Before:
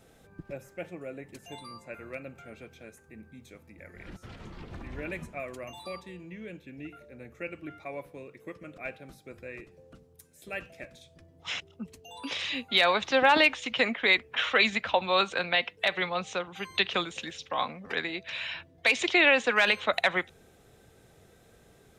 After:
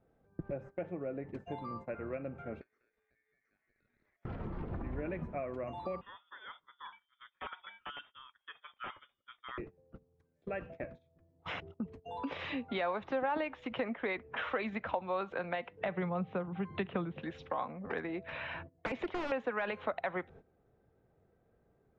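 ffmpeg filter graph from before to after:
-filter_complex "[0:a]asettb=1/sr,asplit=3[a][b][c];[a]atrim=end=2.614[d];[b]atrim=start=2.61:end=4.25,asetpts=PTS-STARTPTS,afade=t=in:d=0.004:c=qsin,afade=t=out:st=1.636:d=0.004:c=qsin,lowpass=f=4.2k:t=q:w=9.7,acompressor=threshold=-54dB:ratio=4:attack=3.2:release=140:knee=1:detection=peak,aeval=exprs='val(0)*sin(2*PI*2000*n/s)':c=same[e];[c]atrim=start=4.246[f];[d][e]acrossfade=d=0.004:c1=hsin:c2=qsin[g];[g][f]acrossfade=d=0.004:c1=qsin:c2=hsin,asettb=1/sr,asplit=3[h][i][j];[h]atrim=end=6.014[k];[i]atrim=start=6.01:end=9.58,asetpts=PTS-STARTPTS,afade=t=in:d=0.004:c=qsin,afade=t=out:st=3.566:d=0.004:c=qsin,equalizer=f=140:t=o:w=2.8:g=-9.5,aeval=exprs='(mod(37.6*val(0)+1,2)-1)/37.6':c=same,lowpass=f=3.1k:t=q:w=0.5098,lowpass=f=3.1k:t=q:w=0.6013,lowpass=f=3.1k:t=q:w=0.9,lowpass=f=3.1k:t=q:w=2.563,afreqshift=-3700[l];[j]atrim=start=9.576[m];[k][l]acrossfade=d=0.004:c1=hsin:c2=qsin[n];[n][m]acrossfade=d=0.004:c1=qsin:c2=hsin,asettb=1/sr,asplit=3[o][p][q];[o]atrim=end=15.814[r];[p]atrim=start=15.81:end=17.22,asetpts=PTS-STARTPTS,afade=t=in:d=0.004:c=qsin,afade=t=out:st=1.406:d=0.004:c=qsin,lowpass=f=3.7k:w=0.5412,lowpass=f=3.7k:w=1.3066,equalizer=f=160:w=0.86:g=12.5[s];[q]atrim=start=17.216[t];[r][s]acrossfade=d=0.004:c1=hsin:c2=qsin[u];[u][t]acrossfade=d=0.004:c1=qsin:c2=hsin,asettb=1/sr,asplit=3[v][w][x];[v]atrim=end=17.984[y];[w]atrim=start=17.98:end=19.32,asetpts=PTS-STARTPTS,afade=t=in:d=0.004:c=qsin,afade=t=out:st=1.336:d=0.004:c=qsin,highshelf=f=5.2k:g=-10.5,aeval=exprs='0.0668*(abs(mod(val(0)/0.0668+3,4)-2)-1)':c=same[z];[x]atrim=start=19.316[aa];[y][z]acrossfade=d=0.004:c1=hsin:c2=qsin[ab];[ab][aa]acrossfade=d=0.004:c1=qsin:c2=hsin,agate=range=-19dB:threshold=-49dB:ratio=16:detection=peak,lowpass=1.2k,acompressor=threshold=-44dB:ratio=3,volume=7dB"

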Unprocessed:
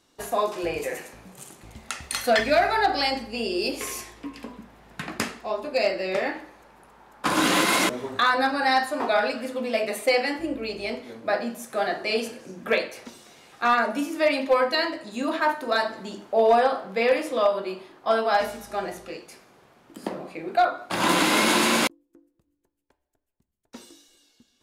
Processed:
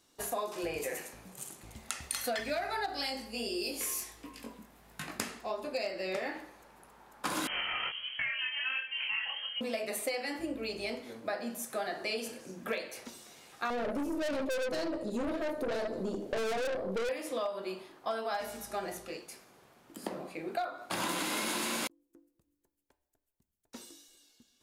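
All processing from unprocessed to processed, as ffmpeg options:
-filter_complex "[0:a]asettb=1/sr,asplit=3[a][b][c];[a]atrim=end=2.864[d];[b]atrim=start=2.86:end=5.19,asetpts=PTS-STARTPTS,afade=t=in:d=0.004:c=qsin,afade=t=out:st=2.326:d=0.004:c=qsin,highshelf=f=7.6k:g=8,flanger=delay=19.5:depth=3.9:speed=1.4[e];[c]atrim=start=5.186[f];[d][e]acrossfade=d=0.004:c1=hsin:c2=qsin[g];[g][f]acrossfade=d=0.004:c1=qsin:c2=hsin,asettb=1/sr,asplit=3[h][i][j];[h]atrim=end=7.474[k];[i]atrim=start=7.47:end=9.61,asetpts=PTS-STARTPTS,afade=t=in:d=0.004:c=qsin,afade=t=out:st=2.136:d=0.004:c=qsin,lowpass=f=2.9k:t=q:w=0.5098,lowpass=f=2.9k:t=q:w=0.6013,lowpass=f=2.9k:t=q:w=0.9,lowpass=f=2.9k:t=q:w=2.563,afreqshift=-3400,flanger=delay=20:depth=5.2:speed=1.4[l];[j]atrim=start=9.606[m];[k][l]acrossfade=d=0.004:c1=hsin:c2=qsin[n];[n][m]acrossfade=d=0.004:c1=qsin:c2=hsin,asettb=1/sr,asplit=3[o][p][q];[o]atrim=end=13.704[r];[p]atrim=start=13.7:end=17.09,asetpts=PTS-STARTPTS,afade=t=in:d=0.004:c=qsin,afade=t=out:st=3.386:d=0.004:c=qsin,lowshelf=f=740:t=q:w=3:g=12,aeval=exprs='(tanh(7.94*val(0)+0.4)-tanh(0.4))/7.94':c=same[s];[q]atrim=start=17.086[t];[r][s]acrossfade=d=0.004:c1=hsin:c2=qsin[u];[u][t]acrossfade=d=0.004:c1=qsin:c2=hsin,highshelf=f=6.6k:g=9,acompressor=threshold=-26dB:ratio=6,volume=-5.5dB"

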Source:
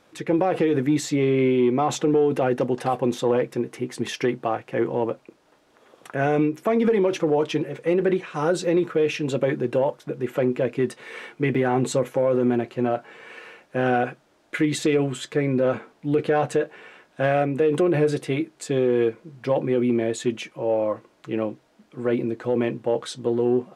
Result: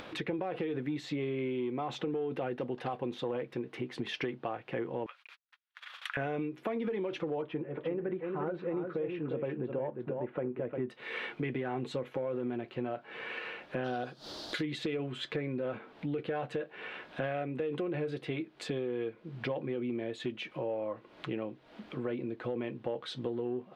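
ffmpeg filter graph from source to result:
-filter_complex "[0:a]asettb=1/sr,asplit=3[a][b][c];[a]atrim=end=5.064[d];[b]atrim=start=5.06:end=6.17,asetpts=PTS-STARTPTS,afade=t=in:d=0.004:c=qsin,afade=t=out:st=1.106:d=0.004:c=qsin,agate=range=-58dB:threshold=-55dB:ratio=16:release=100:detection=peak,highpass=f=1.4k:w=0.5412,highpass=f=1.4k:w=1.3066,acontrast=61[e];[c]atrim=start=6.166[f];[d][e]acrossfade=d=0.004:c1=hsin:c2=qsin[g];[g][f]acrossfade=d=0.004:c1=qsin:c2=hsin,asettb=1/sr,asplit=3[h][i][j];[h]atrim=end=7.424[k];[i]atrim=start=7.42:end=10.89,asetpts=PTS-STARTPTS,afade=t=in:d=0.004:c=qsin,afade=t=out:st=3.466:d=0.004:c=qsin,lowpass=1.5k,aecho=1:1:353:0.473,atrim=end_sample=153027[l];[j]atrim=start=10.886[m];[k][l]acrossfade=d=0.004:c1=hsin:c2=qsin[n];[n][m]acrossfade=d=0.004:c1=qsin:c2=hsin,asettb=1/sr,asplit=3[o][p][q];[o]atrim=end=13.844[r];[p]atrim=start=13.84:end=14.63,asetpts=PTS-STARTPTS,afade=t=in:d=0.004:c=qsin,afade=t=out:st=0.786:d=0.004:c=qsin,acompressor=mode=upward:threshold=-38dB:ratio=2.5:attack=3.2:release=140:knee=2.83:detection=peak,highshelf=f=3.3k:t=q:w=3:g=11.5[s];[q]atrim=start=14.626[t];[r][s]acrossfade=d=0.004:c1=hsin:c2=qsin[u];[u][t]acrossfade=d=0.004:c1=qsin:c2=hsin,acompressor=threshold=-35dB:ratio=4,highshelf=f=5.1k:t=q:w=1.5:g=-13,acompressor=mode=upward:threshold=-37dB:ratio=2.5"

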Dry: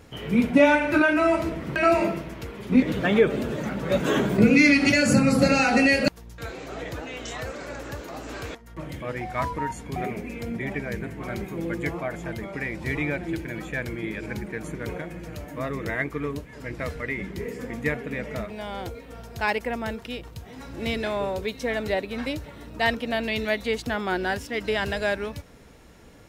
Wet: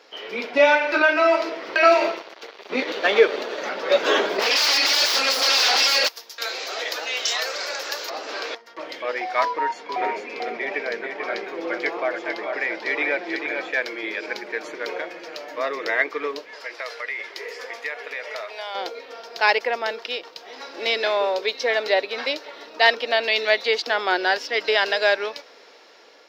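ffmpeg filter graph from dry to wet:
-filter_complex "[0:a]asettb=1/sr,asplit=3[a][b][c];[a]atrim=end=1.864[d];[b]atrim=start=1.86:end=3.62,asetpts=PTS-STARTPTS,afade=t=in:d=0.004:c=qsin,afade=t=out:st=1.756:d=0.004:c=qsin,aeval=exprs='sgn(val(0))*max(abs(val(0))-0.0141,0)':c=same,bandreject=f=5.1k:w=12[e];[c]atrim=start=3.616[f];[d][e]acrossfade=d=0.004:c1=hsin:c2=qsin[g];[g][f]acrossfade=d=0.004:c1=qsin:c2=hsin,asettb=1/sr,asplit=3[h][i][j];[h]atrim=end=4.394[k];[i]atrim=start=4.39:end=8.1,asetpts=PTS-STARTPTS,afade=t=in:d=0.004:c=qsin,afade=t=out:st=3.706:d=0.004:c=qsin,aemphasis=mode=production:type=riaa,aeval=exprs='0.0841*(abs(mod(val(0)/0.0841+3,4)-2)-1)':c=same[l];[j]atrim=start=8.096[m];[k][l]acrossfade=d=0.004:c1=hsin:c2=qsin[n];[n][m]acrossfade=d=0.004:c1=qsin:c2=hsin,asettb=1/sr,asplit=3[o][p][q];[o]atrim=end=9.454[r];[p]atrim=start=9.45:end=13.71,asetpts=PTS-STARTPTS,afade=t=in:d=0.004:c=qsin,afade=t=out:st=4.256:d=0.004:c=qsin,highshelf=f=5.6k:g=-10,aecho=1:1:440:0.531,atrim=end_sample=187866[s];[q]atrim=start=13.706[t];[r][s]acrossfade=d=0.004:c1=hsin:c2=qsin[u];[u][t]acrossfade=d=0.004:c1=qsin:c2=hsin,asettb=1/sr,asplit=3[v][w][x];[v]atrim=end=16.554[y];[w]atrim=start=16.55:end=18.75,asetpts=PTS-STARTPTS,afade=t=in:d=0.004:c=qsin,afade=t=out:st=2.196:d=0.004:c=qsin,highpass=600,equalizer=f=10k:w=1.4:g=7,acompressor=threshold=-34dB:ratio=3:attack=3.2:release=140:knee=1:detection=peak[z];[x]atrim=start=18.746[aa];[y][z]acrossfade=d=0.004:c1=hsin:c2=qsin[ab];[ab][aa]acrossfade=d=0.004:c1=qsin:c2=hsin,highpass=f=420:w=0.5412,highpass=f=420:w=1.3066,highshelf=f=6.7k:t=q:w=3:g=-11.5,dynaudnorm=f=460:g=5:m=4.5dB,volume=2dB"

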